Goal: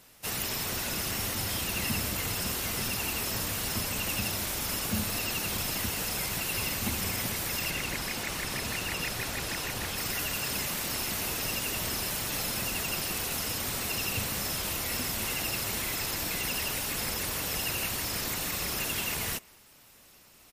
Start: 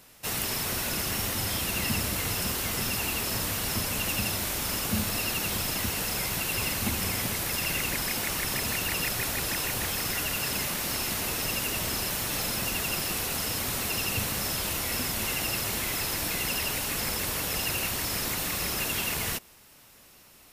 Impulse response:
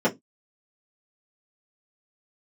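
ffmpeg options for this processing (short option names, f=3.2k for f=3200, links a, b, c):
-filter_complex "[0:a]asettb=1/sr,asplit=3[a][b][c];[a]atrim=end=7.704[d];[b]atrim=start=7.7:end=9.98,asetpts=PTS-STARTPTS,afade=t=in:d=0.004:c=qsin,afade=t=out:st=2.276:d=0.004:c=qsin,highshelf=f=9.6k:g=-8.5[e];[c]atrim=start=9.976[f];[d][e]acrossfade=d=0.004:c1=hsin:c2=qsin[g];[g][f]acrossfade=d=0.004:c1=qsin:c2=hsin,asplit=2[h][i];[i]adelay=190,highpass=300,lowpass=3.4k,asoftclip=type=hard:threshold=-23.5dB,volume=-27dB[j];[h][j]amix=inputs=2:normalize=0,volume=-2dB" -ar 44100 -c:a libmp3lame -b:a 56k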